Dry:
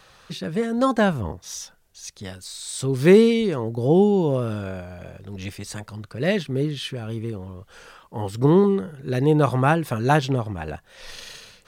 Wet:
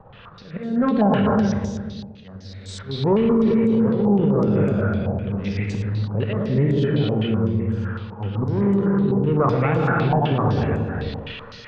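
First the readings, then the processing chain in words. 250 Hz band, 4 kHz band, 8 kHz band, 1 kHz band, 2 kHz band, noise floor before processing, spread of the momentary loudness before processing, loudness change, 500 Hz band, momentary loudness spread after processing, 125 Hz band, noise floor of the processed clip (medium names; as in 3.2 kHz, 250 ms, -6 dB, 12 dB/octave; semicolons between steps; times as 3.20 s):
+3.5 dB, -2.5 dB, under -10 dB, +1.0 dB, -1.5 dB, -54 dBFS, 21 LU, +0.5 dB, -1.0 dB, 15 LU, +4.0 dB, -42 dBFS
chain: on a send: filtered feedback delay 116 ms, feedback 65%, low-pass 1.2 kHz, level -11 dB; on the sum: saturation -16 dBFS, distortion -10 dB; harmonic tremolo 1.2 Hz, depth 50%, crossover 460 Hz; peaking EQ 97 Hz +9.5 dB 1.6 oct; hum notches 60/120/180 Hz; slow attack 353 ms; small resonant body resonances 210/460 Hz, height 7 dB, ringing for 40 ms; in parallel at +2 dB: level held to a coarse grid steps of 18 dB; on the sum: distance through air 250 m; gated-style reverb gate 430 ms flat, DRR 0 dB; peak limiter -11.5 dBFS, peak gain reduction 13.5 dB; step-sequenced low-pass 7.9 Hz 850–7400 Hz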